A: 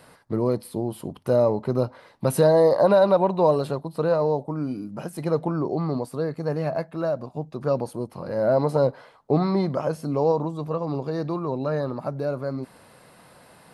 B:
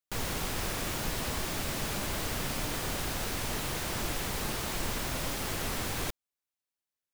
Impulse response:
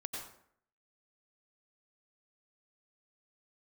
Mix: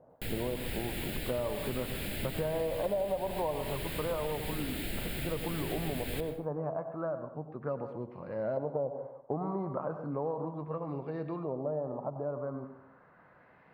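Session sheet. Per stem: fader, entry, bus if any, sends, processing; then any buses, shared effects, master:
−13.0 dB, 0.00 s, send −4 dB, auto-filter low-pass saw up 0.35 Hz 630–3,000 Hz; high-shelf EQ 3,200 Hz −10.5 dB
+1.0 dB, 0.10 s, send −8 dB, phaser with its sweep stopped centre 2,600 Hz, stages 4; automatic ducking −6 dB, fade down 0.25 s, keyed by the first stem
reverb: on, RT60 0.65 s, pre-delay 83 ms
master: downward compressor 5 to 1, threshold −30 dBFS, peak gain reduction 12.5 dB

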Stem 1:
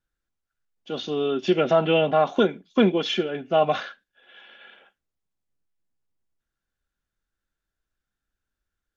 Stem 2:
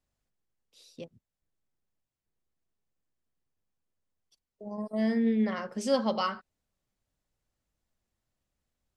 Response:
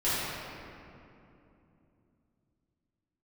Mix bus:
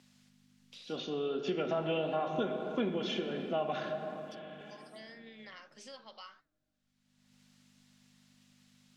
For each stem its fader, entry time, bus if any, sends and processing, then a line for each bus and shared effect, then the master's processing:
−4.5 dB, 0.00 s, send −17 dB, no processing
−2.0 dB, 0.00 s, no send, mains hum 50 Hz, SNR 20 dB; resonant band-pass 3,800 Hz, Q 0.88; multiband upward and downward compressor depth 100%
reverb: on, RT60 2.9 s, pre-delay 4 ms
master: flanger 1.4 Hz, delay 7.3 ms, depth 7.9 ms, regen −84%; downward compressor 2 to 1, threshold −34 dBFS, peak gain reduction 8 dB

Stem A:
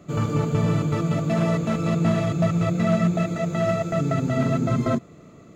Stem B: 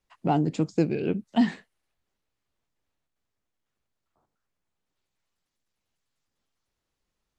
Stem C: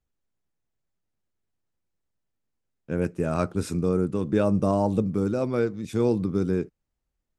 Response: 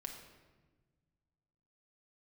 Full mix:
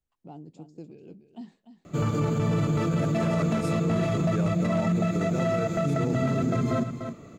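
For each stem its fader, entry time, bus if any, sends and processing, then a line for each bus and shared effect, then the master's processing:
+1.0 dB, 1.85 s, no send, echo send −13.5 dB, no processing
−19.5 dB, 0.00 s, no send, echo send −11 dB, noise gate with hold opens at −44 dBFS; parametric band 1,800 Hz −11.5 dB 1.3 octaves
−5.5 dB, 0.00 s, no send, no echo send, no processing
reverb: not used
echo: single-tap delay 295 ms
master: brickwall limiter −17.5 dBFS, peak gain reduction 8.5 dB

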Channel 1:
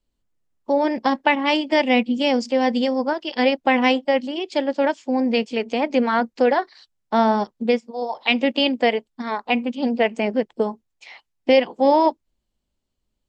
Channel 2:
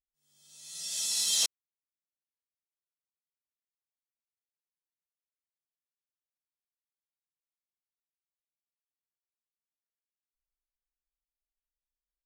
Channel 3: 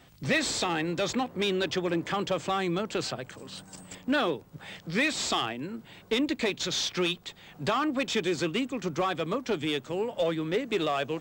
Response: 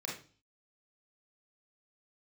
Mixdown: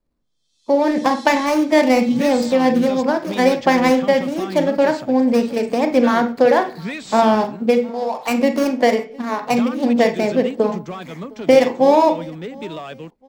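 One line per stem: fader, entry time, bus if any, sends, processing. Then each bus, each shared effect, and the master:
0.0 dB, 0.00 s, send −4.5 dB, echo send −22.5 dB, running median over 15 samples; transient designer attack +2 dB, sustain +6 dB
−6.5 dB, 0.00 s, no send, echo send −8.5 dB, resonant band-pass 3,800 Hz, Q 2.2
−4.5 dB, 1.90 s, muted 0:07.90–0:09.25, no send, no echo send, parametric band 190 Hz +10.5 dB 0.76 octaves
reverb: on, RT60 0.40 s, pre-delay 28 ms
echo: repeating echo 710 ms, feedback 33%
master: no processing

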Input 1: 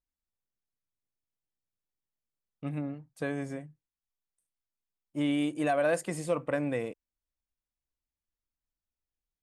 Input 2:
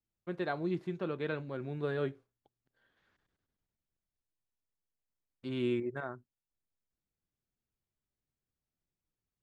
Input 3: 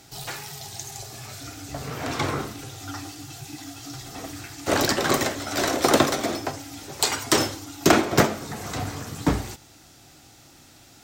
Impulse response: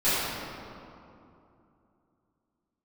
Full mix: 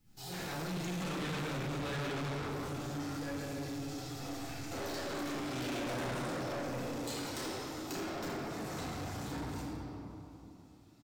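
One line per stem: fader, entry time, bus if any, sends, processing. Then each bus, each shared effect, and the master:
−13.5 dB, 0.00 s, send −3.5 dB, downward compressor, threshold −31 dBFS, peak gain reduction 8 dB
−6.0 dB, 0.00 s, send −7.5 dB, low shelf with overshoot 300 Hz +9.5 dB, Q 1.5; volume swells 542 ms; every bin compressed towards the loudest bin 2 to 1
−16.0 dB, 0.05 s, send −4 dB, downward expander −41 dBFS; downward compressor 4 to 1, threshold −29 dBFS, peak gain reduction 15 dB; pitch vibrato 5.5 Hz 37 cents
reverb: on, RT60 2.7 s, pre-delay 4 ms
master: soft clipping −35 dBFS, distortion −7 dB

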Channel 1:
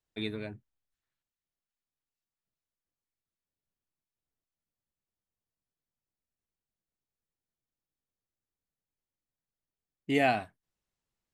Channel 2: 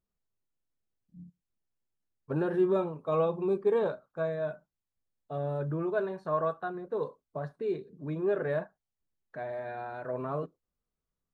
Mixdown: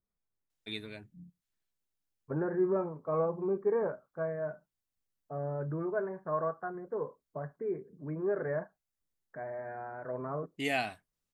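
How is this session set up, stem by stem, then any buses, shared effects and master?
−8.0 dB, 0.50 s, no send, high-shelf EQ 2,100 Hz +10.5 dB
−3.0 dB, 0.00 s, no send, Butterworth low-pass 2,200 Hz 96 dB per octave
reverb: not used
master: no processing

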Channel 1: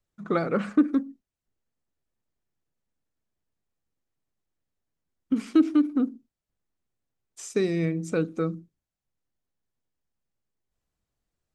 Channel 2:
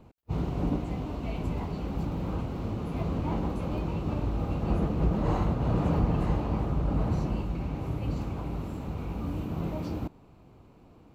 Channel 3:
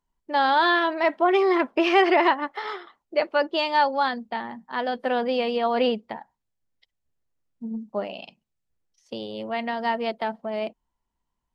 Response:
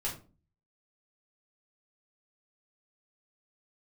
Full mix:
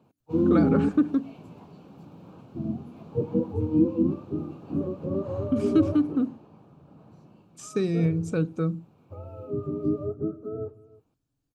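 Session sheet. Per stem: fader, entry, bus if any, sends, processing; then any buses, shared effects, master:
−3.0 dB, 0.20 s, no send, no echo send, parametric band 130 Hz +14 dB 0.77 octaves
0:05.98 −6.5 dB → 0:06.43 −14.5 dB, 0.00 s, no send, no echo send, high-pass filter 120 Hz 24 dB per octave; automatic ducking −7 dB, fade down 1.95 s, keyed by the third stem
−6.5 dB, 0.00 s, muted 0:00.89–0:02.52, send −15.5 dB, echo send −19.5 dB, frequency axis turned over on the octave scale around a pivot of 530 Hz; octave-band graphic EQ 250/1,000/2,000 Hz +10/−8/−12 dB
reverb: on, RT60 0.35 s, pre-delay 5 ms
echo: single-tap delay 317 ms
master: notch filter 2,000 Hz, Q 5.5

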